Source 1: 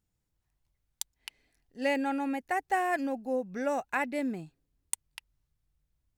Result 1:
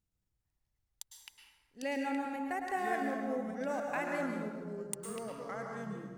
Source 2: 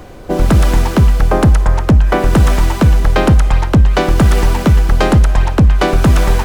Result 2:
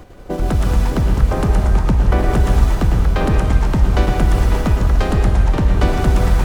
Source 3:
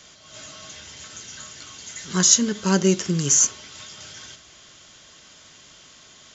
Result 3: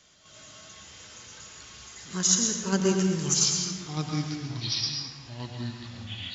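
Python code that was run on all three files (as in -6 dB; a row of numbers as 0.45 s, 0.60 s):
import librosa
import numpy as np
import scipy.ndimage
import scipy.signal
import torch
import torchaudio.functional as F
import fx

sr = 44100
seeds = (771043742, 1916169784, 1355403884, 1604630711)

p1 = fx.low_shelf(x, sr, hz=150.0, db=3.0)
p2 = fx.level_steps(p1, sr, step_db=16)
p3 = p1 + F.gain(torch.from_numpy(p2), 2.5).numpy()
p4 = fx.echo_pitch(p3, sr, ms=536, semitones=-4, count=3, db_per_echo=-6.0)
p5 = fx.rev_plate(p4, sr, seeds[0], rt60_s=1.3, hf_ratio=0.6, predelay_ms=95, drr_db=2.0)
y = F.gain(torch.from_numpy(p5), -13.0).numpy()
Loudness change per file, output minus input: -5.0 LU, -4.5 LU, -8.0 LU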